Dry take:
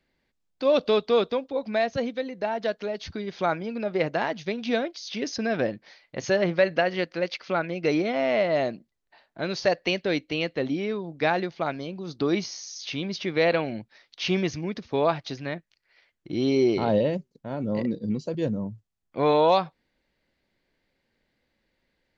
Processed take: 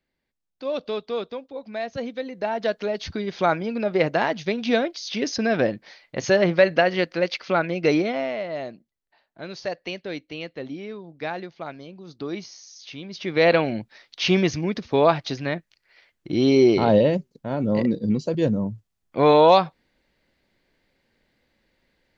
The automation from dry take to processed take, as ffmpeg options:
-af "volume=6.68,afade=t=in:st=1.74:d=1.16:silence=0.281838,afade=t=out:st=7.9:d=0.46:silence=0.281838,afade=t=in:st=13.1:d=0.41:silence=0.251189"

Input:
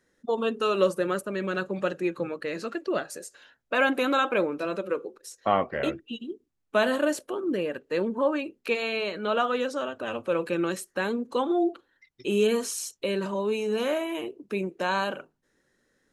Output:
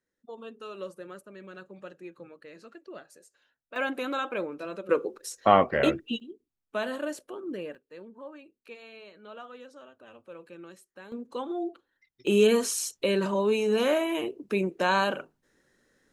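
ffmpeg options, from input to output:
-af "asetnsamples=n=441:p=0,asendcmd='3.76 volume volume -7dB;4.89 volume volume 4.5dB;6.2 volume volume -8dB;7.75 volume volume -19dB;11.12 volume volume -8dB;12.27 volume volume 2.5dB',volume=0.158"

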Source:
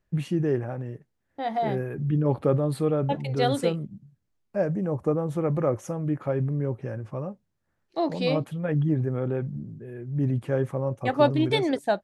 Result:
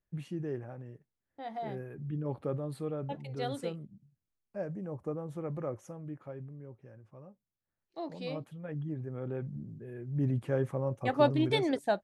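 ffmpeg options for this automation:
-af "volume=1.41,afade=t=out:st=5.63:d=0.95:silence=0.398107,afade=t=in:st=7.13:d=0.85:silence=0.473151,afade=t=in:st=9.03:d=0.75:silence=0.375837"

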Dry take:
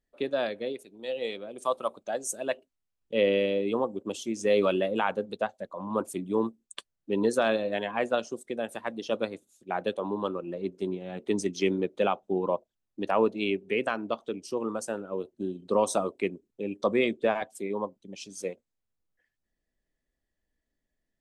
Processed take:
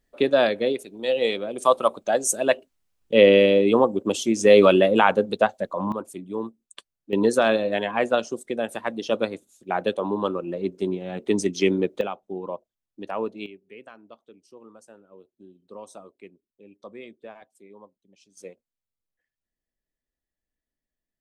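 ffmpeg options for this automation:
-af "asetnsamples=n=441:p=0,asendcmd='5.92 volume volume -3dB;7.13 volume volume 5.5dB;12.01 volume volume -4.5dB;13.46 volume volume -16.5dB;18.37 volume volume -7.5dB',volume=3.16"

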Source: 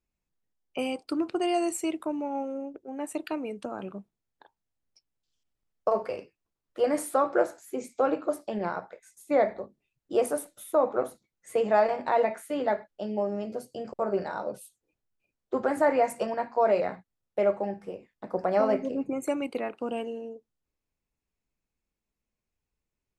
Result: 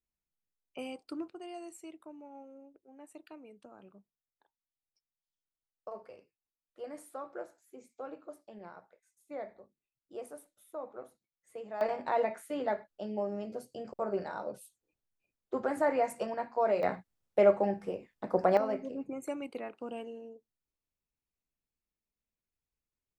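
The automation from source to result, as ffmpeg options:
-af "asetnsamples=n=441:p=0,asendcmd='1.28 volume volume -18dB;11.81 volume volume -5.5dB;16.83 volume volume 1.5dB;18.57 volume volume -8.5dB',volume=0.299"

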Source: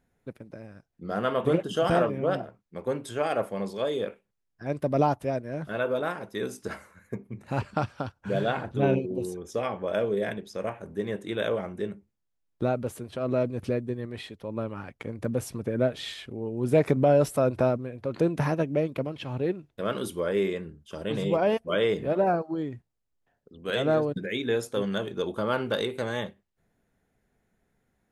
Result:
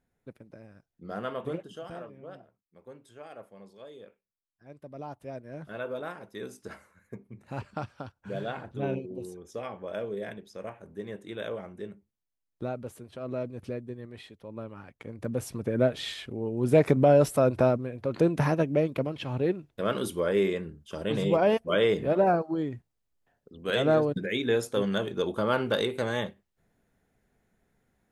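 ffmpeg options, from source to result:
-af "volume=4.73,afade=t=out:st=1.13:d=0.75:silence=0.237137,afade=t=in:st=5.02:d=0.53:silence=0.281838,afade=t=in:st=14.96:d=0.85:silence=0.375837"

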